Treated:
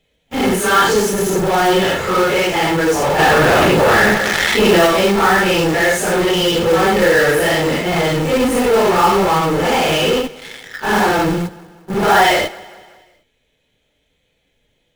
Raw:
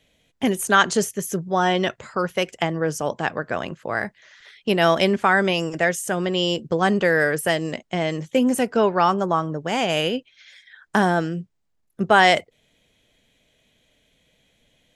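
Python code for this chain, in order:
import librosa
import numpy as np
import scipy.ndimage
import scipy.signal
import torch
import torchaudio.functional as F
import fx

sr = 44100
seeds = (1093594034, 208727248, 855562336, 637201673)

p1 = fx.phase_scramble(x, sr, seeds[0], window_ms=200)
p2 = fx.fuzz(p1, sr, gain_db=40.0, gate_db=-48.0)
p3 = p1 + (p2 * librosa.db_to_amplitude(-4.0))
p4 = fx.high_shelf(p3, sr, hz=4800.0, db=-7.5)
p5 = p4 + fx.echo_feedback(p4, sr, ms=188, feedback_pct=51, wet_db=-21.5, dry=0)
p6 = fx.quant_float(p5, sr, bits=2)
p7 = p6 + 0.33 * np.pad(p6, (int(2.3 * sr / 1000.0), 0))[:len(p6)]
y = fx.env_flatten(p7, sr, amount_pct=70, at=(3.18, 4.86), fade=0.02)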